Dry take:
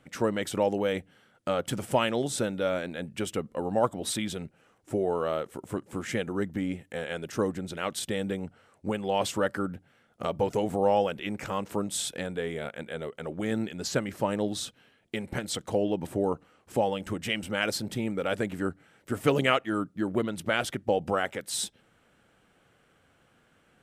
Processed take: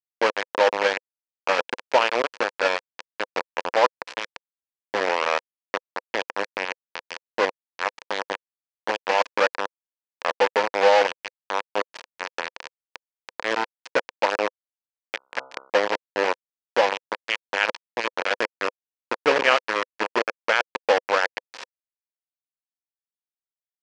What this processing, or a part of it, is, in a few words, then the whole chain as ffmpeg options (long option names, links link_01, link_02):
hand-held game console: -filter_complex "[0:a]acrusher=bits=3:mix=0:aa=0.000001,highpass=420,equalizer=frequency=510:width_type=q:width=4:gain=6,equalizer=frequency=960:width_type=q:width=4:gain=6,equalizer=frequency=1700:width_type=q:width=4:gain=5,equalizer=frequency=2500:width_type=q:width=4:gain=4,equalizer=frequency=3700:width_type=q:width=4:gain=-4,lowpass=frequency=5200:width=0.5412,lowpass=frequency=5200:width=1.3066,asettb=1/sr,asplit=3[link_01][link_02][link_03];[link_01]atrim=end=15.174[link_04];[link_02]atrim=start=15.17:end=15.7,asetpts=PTS-STARTPTS,afade=type=in:duration=0.004:curve=qsin,afade=type=out:start_time=0.526:duration=0.004:curve=qsin,bandreject=frequency=66.41:width_type=h:width=4,bandreject=frequency=132.82:width_type=h:width=4,bandreject=frequency=199.23:width_type=h:width=4,bandreject=frequency=265.64:width_type=h:width=4,bandreject=frequency=332.05:width_type=h:width=4,bandreject=frequency=398.46:width_type=h:width=4,bandreject=frequency=464.87:width_type=h:width=4,bandreject=frequency=531.28:width_type=h:width=4,bandreject=frequency=597.69:width_type=h:width=4,bandreject=frequency=664.1:width_type=h:width=4,bandreject=frequency=730.51:width_type=h:width=4,bandreject=frequency=796.92:width_type=h:width=4,bandreject=frequency=863.33:width_type=h:width=4,bandreject=frequency=929.74:width_type=h:width=4,bandreject=frequency=996.15:width_type=h:width=4,bandreject=frequency=1062.56:width_type=h:width=4,bandreject=frequency=1128.97:width_type=h:width=4,bandreject=frequency=1195.38:width_type=h:width=4,bandreject=frequency=1261.79:width_type=h:width=4,bandreject=frequency=1328.2:width_type=h:width=4,bandreject=frequency=1394.61:width_type=h:width=4,bandreject=frequency=1461.02:width_type=h:width=4[link_05];[link_03]atrim=start=15.696[link_06];[link_04][link_05]acrossfade=duration=0.004:curve1=hsin:curve2=qsin[link_07];[link_07][link_06]acrossfade=duration=0.004:curve1=qsin:curve2=hsin,volume=3dB"